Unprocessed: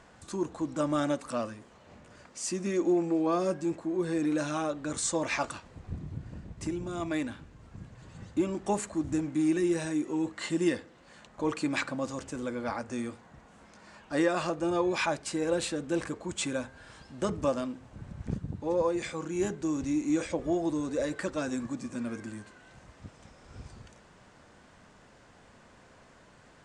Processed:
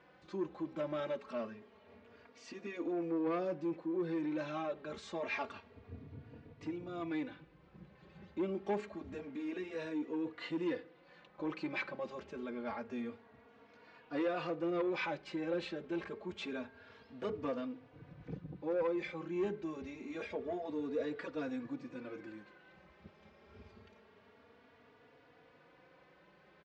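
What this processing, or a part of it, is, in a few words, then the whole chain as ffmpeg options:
barber-pole flanger into a guitar amplifier: -filter_complex "[0:a]asplit=2[s0][s1];[s1]adelay=3.5,afreqshift=0.27[s2];[s0][s2]amix=inputs=2:normalize=1,asoftclip=type=tanh:threshold=0.0473,highpass=94,equalizer=f=120:t=q:w=4:g=-7,equalizer=f=440:t=q:w=4:g=8,equalizer=f=2300:t=q:w=4:g=4,lowpass=f=4200:w=0.5412,lowpass=f=4200:w=1.3066,volume=0.596"

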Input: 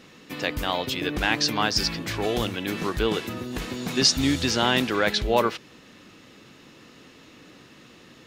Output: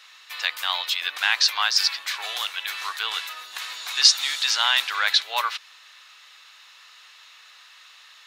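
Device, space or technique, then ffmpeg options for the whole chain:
headphones lying on a table: -af "highpass=f=1000:w=0.5412,highpass=f=1000:w=1.3066,equalizer=f=3900:t=o:w=0.38:g=5.5,volume=1.41"

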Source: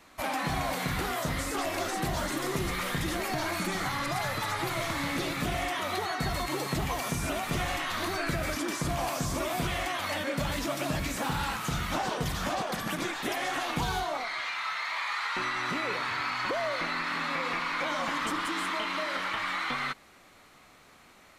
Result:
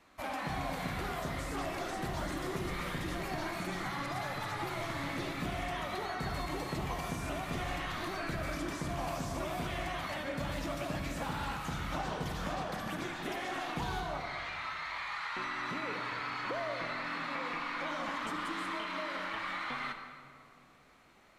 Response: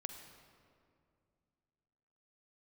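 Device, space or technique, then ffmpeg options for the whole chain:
swimming-pool hall: -filter_complex "[1:a]atrim=start_sample=2205[s0];[0:a][s0]afir=irnorm=-1:irlink=0,highshelf=f=4800:g=-7,volume=0.708"

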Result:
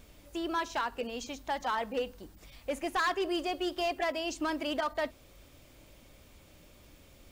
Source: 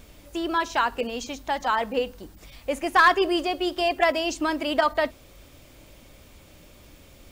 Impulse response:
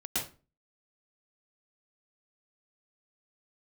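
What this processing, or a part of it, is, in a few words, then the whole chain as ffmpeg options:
limiter into clipper: -af "alimiter=limit=0.2:level=0:latency=1:release=419,asoftclip=type=hard:threshold=0.112,volume=0.473"

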